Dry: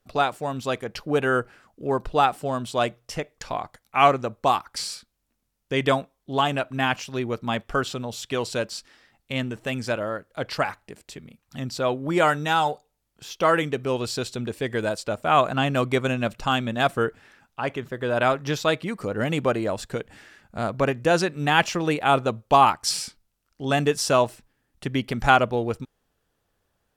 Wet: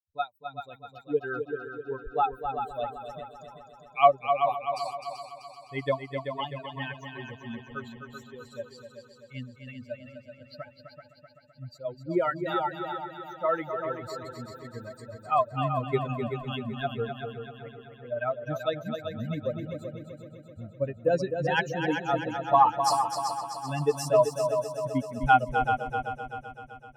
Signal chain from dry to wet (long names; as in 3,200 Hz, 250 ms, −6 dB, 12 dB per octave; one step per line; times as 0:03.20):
spectral dynamics exaggerated over time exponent 3
parametric band 4,700 Hz −5 dB 2.4 octaves
on a send: echo machine with several playback heads 128 ms, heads second and third, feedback 57%, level −7.5 dB
on the sum: dynamic equaliser 670 Hz, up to +4 dB, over −40 dBFS, Q 1.5